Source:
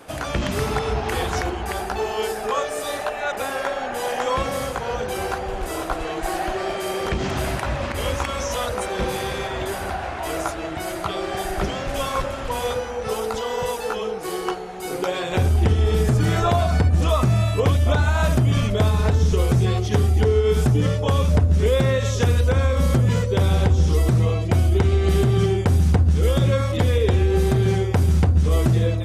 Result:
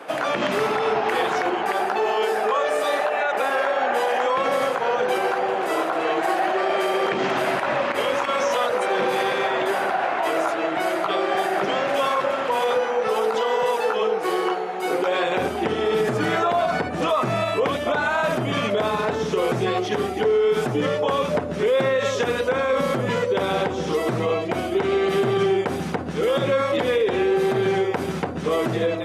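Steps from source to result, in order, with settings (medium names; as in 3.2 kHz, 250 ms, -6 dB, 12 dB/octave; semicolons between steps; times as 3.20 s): high-pass 140 Hz 24 dB/octave; tone controls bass -14 dB, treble -13 dB; peak limiter -20.5 dBFS, peak gain reduction 9.5 dB; trim +7.5 dB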